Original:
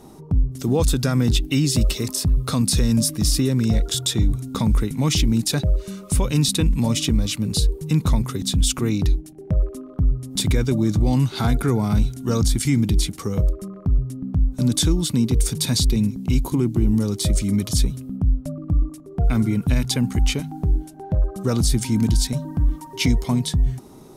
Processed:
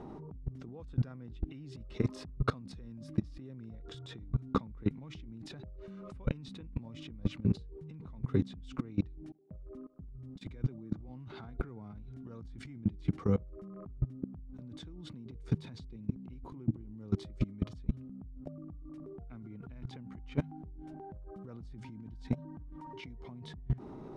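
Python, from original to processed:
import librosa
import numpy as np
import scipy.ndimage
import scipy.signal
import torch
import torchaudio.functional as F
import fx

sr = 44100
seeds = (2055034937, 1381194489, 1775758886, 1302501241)

y = fx.band_widen(x, sr, depth_pct=70, at=(9.32, 11.09))
y = fx.over_compress(y, sr, threshold_db=-24.0, ratio=-0.5)
y = scipy.signal.sosfilt(scipy.signal.butter(2, 1900.0, 'lowpass', fs=sr, output='sos'), y)
y = fx.level_steps(y, sr, step_db=21)
y = F.gain(torch.from_numpy(y), -4.5).numpy()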